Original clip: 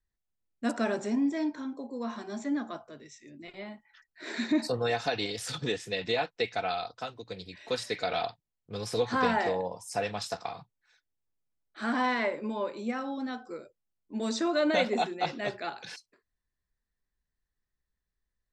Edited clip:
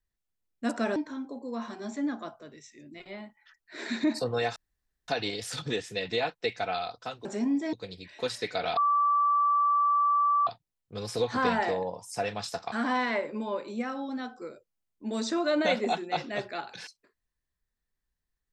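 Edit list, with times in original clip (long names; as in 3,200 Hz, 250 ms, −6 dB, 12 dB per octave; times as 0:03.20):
0:00.96–0:01.44: move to 0:07.21
0:05.04: splice in room tone 0.52 s
0:08.25: insert tone 1,160 Hz −21 dBFS 1.70 s
0:10.50–0:11.81: remove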